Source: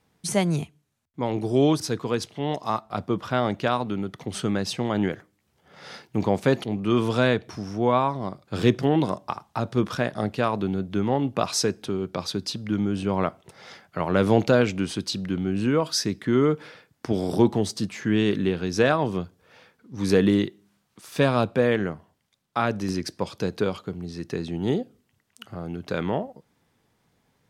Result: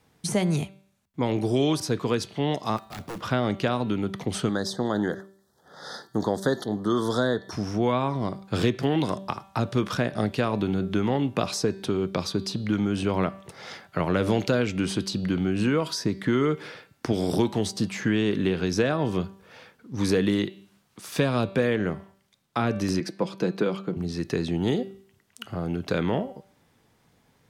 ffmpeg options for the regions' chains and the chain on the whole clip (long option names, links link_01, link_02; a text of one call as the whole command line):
ffmpeg -i in.wav -filter_complex "[0:a]asettb=1/sr,asplit=3[link_01][link_02][link_03];[link_01]atrim=end=2.774[link_04];[link_02]atrim=start=2.77:end=3.21,asetpts=PTS-STARTPTS,afade=type=in:duration=0.004:curve=qsin,afade=type=out:start_time=0.436:duration=0.004:curve=qsin,acrusher=bits=4:mode=log:mix=0:aa=0.000001,acompressor=threshold=-34dB:ratio=2.5:attack=3.2:release=140:knee=1:detection=peak,aeval=exprs='0.0211*(abs(mod(val(0)/0.0211+3,4)-2)-1)':channel_layout=same[link_05];[link_03]atrim=start=3.206[link_06];[link_04][link_05]acrossfade=duration=0.004:curve1=hsin:curve2=qsin[link_07];[link_07][link_06]acrossfade=duration=0.004:curve1=qsin:curve2=hsin,asettb=1/sr,asplit=3[link_08][link_09][link_10];[link_08]atrim=end=4.494[link_11];[link_09]atrim=start=4.49:end=7.52,asetpts=PTS-STARTPTS,afade=type=in:duration=0.004:curve=qsin,afade=type=out:start_time=3.026:duration=0.004:curve=qsin,asuperstop=centerf=2500:order=8:qfactor=1.6,lowshelf=frequency=160:gain=-11.5[link_12];[link_10]atrim=start=7.516[link_13];[link_11][link_12]acrossfade=duration=0.004:curve1=hsin:curve2=qsin[link_14];[link_14][link_13]acrossfade=duration=0.004:curve1=qsin:curve2=hsin,asettb=1/sr,asplit=3[link_15][link_16][link_17];[link_15]atrim=end=23.004[link_18];[link_16]atrim=start=23:end=23.97,asetpts=PTS-STARTPTS,afade=type=in:duration=0.004:curve=qsin,afade=type=out:start_time=0.966:duration=0.004:curve=qsin,highpass=frequency=160:width=0.5412,highpass=frequency=160:width=1.3066,highshelf=frequency=2500:gain=-10.5,aecho=1:1:5.9:0.35,atrim=end_sample=42777[link_19];[link_17]atrim=start=23.966[link_20];[link_18][link_19]acrossfade=duration=0.004:curve1=hsin:curve2=qsin[link_21];[link_21][link_20]acrossfade=duration=0.004:curve1=qsin:curve2=hsin,bandreject=frequency=194.2:width_type=h:width=4,bandreject=frequency=388.4:width_type=h:width=4,bandreject=frequency=582.6:width_type=h:width=4,bandreject=frequency=776.8:width_type=h:width=4,bandreject=frequency=971:width_type=h:width=4,bandreject=frequency=1165.2:width_type=h:width=4,bandreject=frequency=1359.4:width_type=h:width=4,bandreject=frequency=1553.6:width_type=h:width=4,bandreject=frequency=1747.8:width_type=h:width=4,bandreject=frequency=1942:width_type=h:width=4,bandreject=frequency=2136.2:width_type=h:width=4,bandreject=frequency=2330.4:width_type=h:width=4,bandreject=frequency=2524.6:width_type=h:width=4,bandreject=frequency=2718.8:width_type=h:width=4,bandreject=frequency=2913:width_type=h:width=4,bandreject=frequency=3107.2:width_type=h:width=4,bandreject=frequency=3301.4:width_type=h:width=4,bandreject=frequency=3495.6:width_type=h:width=4,bandreject=frequency=3689.8:width_type=h:width=4,bandreject=frequency=3884:width_type=h:width=4,bandreject=frequency=4078.2:width_type=h:width=4,bandreject=frequency=4272.4:width_type=h:width=4,bandreject=frequency=4466.6:width_type=h:width=4,bandreject=frequency=4660.8:width_type=h:width=4,acrossover=split=570|1300[link_22][link_23][link_24];[link_22]acompressor=threshold=-26dB:ratio=4[link_25];[link_23]acompressor=threshold=-41dB:ratio=4[link_26];[link_24]acompressor=threshold=-36dB:ratio=4[link_27];[link_25][link_26][link_27]amix=inputs=3:normalize=0,volume=4.5dB" out.wav